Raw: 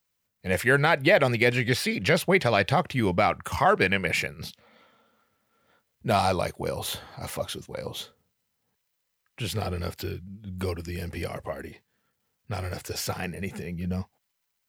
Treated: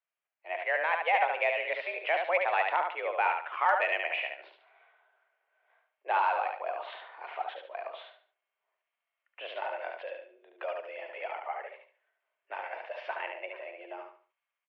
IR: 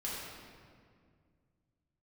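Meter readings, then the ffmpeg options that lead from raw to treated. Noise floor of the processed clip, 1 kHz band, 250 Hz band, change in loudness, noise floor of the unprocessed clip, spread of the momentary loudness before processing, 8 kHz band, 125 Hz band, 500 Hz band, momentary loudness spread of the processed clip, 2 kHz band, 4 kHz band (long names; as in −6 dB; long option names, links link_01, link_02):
below −85 dBFS, −1.0 dB, below −25 dB, −5.5 dB, −78 dBFS, 16 LU, below −35 dB, below −40 dB, −7.5 dB, 17 LU, −4.5 dB, −11.5 dB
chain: -af "aecho=1:1:72|144|216|288:0.596|0.185|0.0572|0.0177,dynaudnorm=framelen=690:gausssize=3:maxgain=6dB,highpass=frequency=340:width_type=q:width=0.5412,highpass=frequency=340:width_type=q:width=1.307,lowpass=frequency=2700:width_type=q:width=0.5176,lowpass=frequency=2700:width_type=q:width=0.7071,lowpass=frequency=2700:width_type=q:width=1.932,afreqshift=170,aeval=exprs='0.75*(cos(1*acos(clip(val(0)/0.75,-1,1)))-cos(1*PI/2))+0.0376*(cos(3*acos(clip(val(0)/0.75,-1,1)))-cos(3*PI/2))+0.015*(cos(5*acos(clip(val(0)/0.75,-1,1)))-cos(5*PI/2))':channel_layout=same,volume=-8.5dB"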